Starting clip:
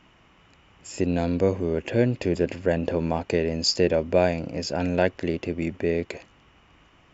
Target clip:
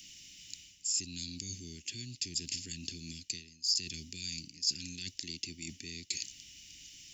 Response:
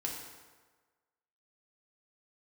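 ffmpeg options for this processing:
-filter_complex "[0:a]acrossover=split=160|3000[a][b][c];[b]acompressor=threshold=-25dB:ratio=6[d];[a][d][c]amix=inputs=3:normalize=0,asuperstop=centerf=770:order=8:qfactor=0.52,aexciter=amount=5.8:drive=4.6:freq=2.2k,areverse,acompressor=threshold=-34dB:ratio=20,areverse,highshelf=f=3.5k:t=q:w=1.5:g=11,volume=-7.5dB"

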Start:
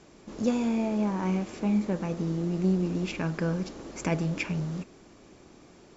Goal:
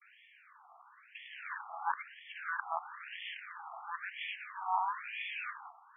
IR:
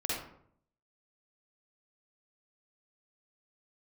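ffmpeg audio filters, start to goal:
-af "areverse,acrusher=bits=4:mode=log:mix=0:aa=0.000001,afftfilt=real='re*between(b*sr/1024,950*pow(2500/950,0.5+0.5*sin(2*PI*1*pts/sr))/1.41,950*pow(2500/950,0.5+0.5*sin(2*PI*1*pts/sr))*1.41)':imag='im*between(b*sr/1024,950*pow(2500/950,0.5+0.5*sin(2*PI*1*pts/sr))/1.41,950*pow(2500/950,0.5+0.5*sin(2*PI*1*pts/sr))*1.41)':win_size=1024:overlap=0.75,volume=6dB"

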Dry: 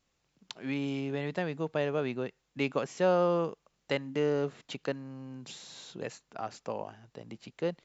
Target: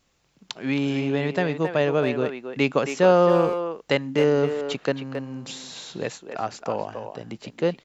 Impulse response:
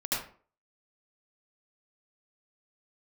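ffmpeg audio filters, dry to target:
-filter_complex "[0:a]asplit=2[a][b];[b]adelay=270,highpass=300,lowpass=3.4k,asoftclip=type=hard:threshold=-23dB,volume=-7dB[c];[a][c]amix=inputs=2:normalize=0,volume=9dB"

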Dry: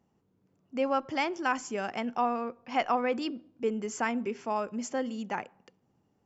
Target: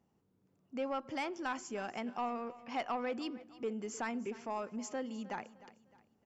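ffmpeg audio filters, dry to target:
-filter_complex "[0:a]asplit=2[a][b];[b]acompressor=threshold=-39dB:ratio=6,volume=-2dB[c];[a][c]amix=inputs=2:normalize=0,asoftclip=type=tanh:threshold=-19dB,aecho=1:1:306|612|918:0.126|0.0478|0.0182,volume=-8.5dB"

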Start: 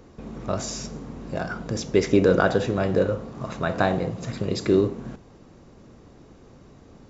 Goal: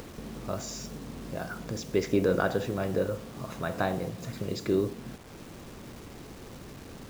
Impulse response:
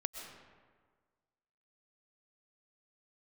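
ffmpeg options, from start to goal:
-af "acompressor=mode=upward:threshold=-27dB:ratio=2.5,acrusher=bits=6:mix=0:aa=0.000001,volume=-7dB"

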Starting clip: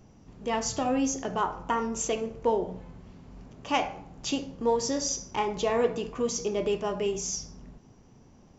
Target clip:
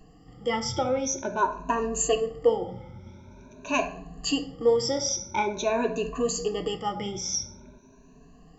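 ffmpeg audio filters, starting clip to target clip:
-af "afftfilt=real='re*pow(10,23/40*sin(2*PI*(1.5*log(max(b,1)*sr/1024/100)/log(2)-(0.47)*(pts-256)/sr)))':imag='im*pow(10,23/40*sin(2*PI*(1.5*log(max(b,1)*sr/1024/100)/log(2)-(0.47)*(pts-256)/sr)))':win_size=1024:overlap=0.75,volume=-2.5dB"

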